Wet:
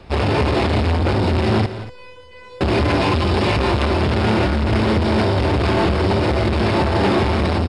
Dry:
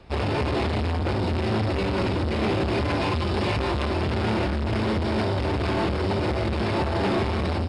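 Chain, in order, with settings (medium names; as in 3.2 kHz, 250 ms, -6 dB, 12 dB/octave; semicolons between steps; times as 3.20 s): 1.66–2.61 s: feedback comb 500 Hz, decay 0.64 s, mix 100%; on a send: multi-tap echo 169/235 ms -14.5/-16 dB; on the sum: trim +7 dB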